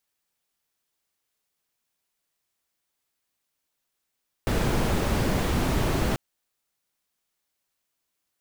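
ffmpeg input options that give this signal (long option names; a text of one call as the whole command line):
ffmpeg -f lavfi -i "anoisesrc=color=brown:amplitude=0.313:duration=1.69:sample_rate=44100:seed=1" out.wav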